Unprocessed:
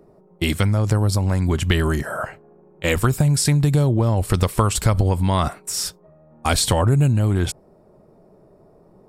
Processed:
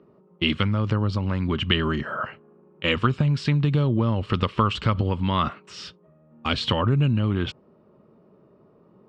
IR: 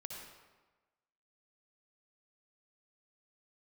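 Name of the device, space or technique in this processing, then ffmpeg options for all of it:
guitar cabinet: -filter_complex "[0:a]asettb=1/sr,asplit=3[link_01][link_02][link_03];[link_01]atrim=end=5.744[link_04];[link_02]atrim=start=5.74:end=6.62,asetpts=PTS-STARTPTS,afade=type=in:duration=0.004:curve=qsin,afade=type=out:start_time=0.876:duration=0.004:curve=qsin,equalizer=frequency=1100:width=1.3:gain=-5[link_05];[link_03]atrim=start=6.616[link_06];[link_04][link_05]acrossfade=duration=0.004:curve1=hsin:curve2=qsin[link_07];[link_07][link_06]acrossfade=duration=0.004:curve1=qsin:curve2=hsin,highpass=78,equalizer=frequency=82:width_type=q:width=4:gain=-3,equalizer=frequency=230:width_type=q:width=4:gain=5,equalizer=frequency=720:width_type=q:width=4:gain=-8,equalizer=frequency=1200:width_type=q:width=4:gain=7,equalizer=frequency=2900:width_type=q:width=4:gain=10,lowpass=frequency=4100:width=0.5412,lowpass=frequency=4100:width=1.3066,volume=-4dB"

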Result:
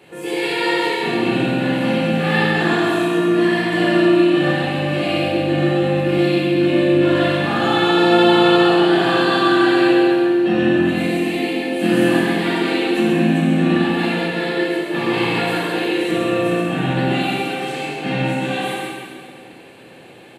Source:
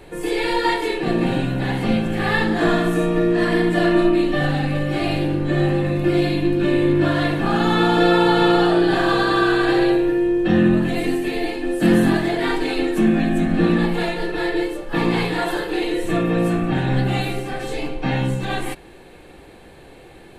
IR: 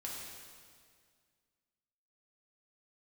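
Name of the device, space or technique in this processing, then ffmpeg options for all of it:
PA in a hall: -filter_complex "[0:a]highpass=frequency=120:width=0.5412,highpass=frequency=120:width=1.3066,equalizer=frequency=2800:width_type=o:width=0.44:gain=7,aecho=1:1:134:0.531[link_01];[1:a]atrim=start_sample=2205[link_02];[link_01][link_02]afir=irnorm=-1:irlink=0,volume=1dB"

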